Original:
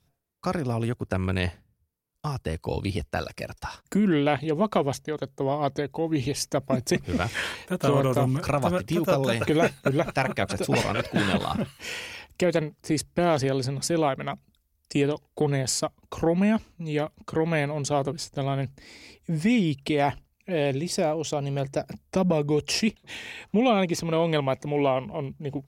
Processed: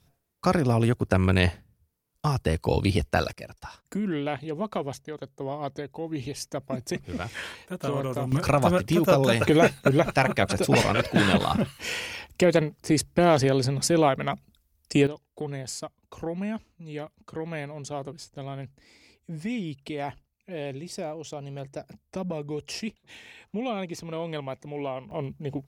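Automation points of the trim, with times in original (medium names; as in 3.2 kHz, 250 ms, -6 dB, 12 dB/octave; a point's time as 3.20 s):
+5 dB
from 3.33 s -6.5 dB
from 8.32 s +3 dB
from 15.07 s -9 dB
from 25.11 s -0.5 dB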